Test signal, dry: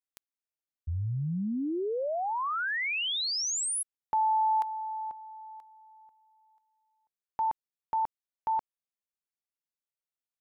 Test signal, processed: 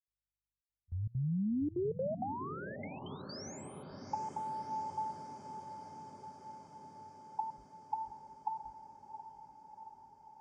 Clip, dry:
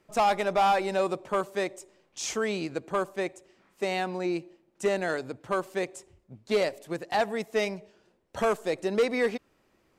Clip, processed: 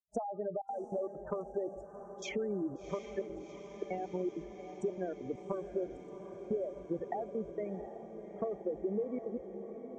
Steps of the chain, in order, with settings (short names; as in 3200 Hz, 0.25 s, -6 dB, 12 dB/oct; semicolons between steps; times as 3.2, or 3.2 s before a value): HPF 130 Hz 12 dB/oct; hum 50 Hz, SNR 26 dB; gate -43 dBFS, range -42 dB; spectral gate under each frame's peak -10 dB strong; resonant high shelf 3600 Hz -9.5 dB, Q 1.5; compressor 20:1, threshold -32 dBFS; step gate ".xxxxxxx.xx.xx" 196 bpm -24 dB; treble ducked by the level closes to 600 Hz, closed at -33.5 dBFS; diffused feedback echo 0.727 s, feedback 72%, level -10.5 dB; gain +1.5 dB